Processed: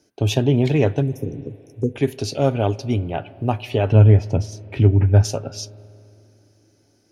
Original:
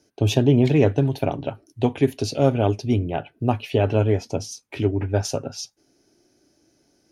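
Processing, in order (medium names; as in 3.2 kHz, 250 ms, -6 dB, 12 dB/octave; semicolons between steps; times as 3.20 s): 1.02–1.96 s: brick-wall FIR band-stop 520–5100 Hz; 3.92–5.24 s: tone controls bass +11 dB, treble -8 dB; on a send at -19 dB: reverberation RT60 2.9 s, pre-delay 34 ms; on the sum: dynamic bell 290 Hz, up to -3 dB, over -31 dBFS, Q 1.1; trim +1 dB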